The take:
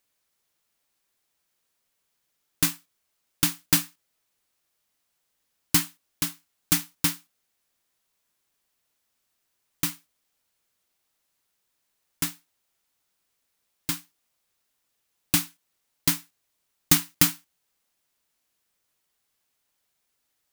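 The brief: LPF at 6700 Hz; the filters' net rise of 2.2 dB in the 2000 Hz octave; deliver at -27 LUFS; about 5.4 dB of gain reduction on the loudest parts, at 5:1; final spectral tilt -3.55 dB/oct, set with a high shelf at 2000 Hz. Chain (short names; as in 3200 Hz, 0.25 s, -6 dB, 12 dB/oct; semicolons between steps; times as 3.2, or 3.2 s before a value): LPF 6700 Hz; high shelf 2000 Hz -7 dB; bell 2000 Hz +7 dB; compressor 5:1, threshold -25 dBFS; gain +8.5 dB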